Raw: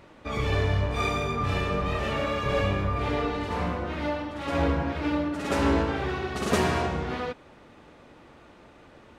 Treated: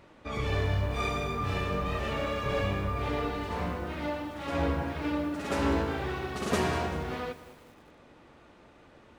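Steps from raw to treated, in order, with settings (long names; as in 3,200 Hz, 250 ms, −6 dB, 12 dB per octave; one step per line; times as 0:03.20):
feedback echo at a low word length 194 ms, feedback 55%, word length 7 bits, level −15 dB
level −4 dB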